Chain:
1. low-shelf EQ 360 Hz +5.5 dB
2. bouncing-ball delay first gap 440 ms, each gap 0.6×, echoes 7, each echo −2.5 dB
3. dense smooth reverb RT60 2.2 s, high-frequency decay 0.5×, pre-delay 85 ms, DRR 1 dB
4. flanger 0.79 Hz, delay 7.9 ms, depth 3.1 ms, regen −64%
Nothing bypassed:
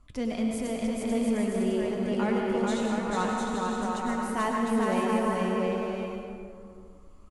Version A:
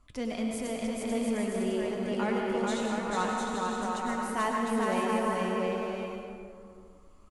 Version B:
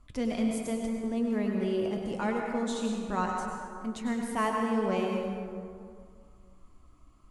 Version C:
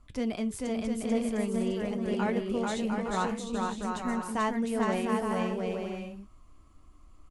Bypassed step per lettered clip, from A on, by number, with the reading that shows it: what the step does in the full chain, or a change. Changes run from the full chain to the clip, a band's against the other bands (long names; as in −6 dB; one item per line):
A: 1, 125 Hz band −4.0 dB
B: 2, change in momentary loudness spread +2 LU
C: 3, change in momentary loudness spread −3 LU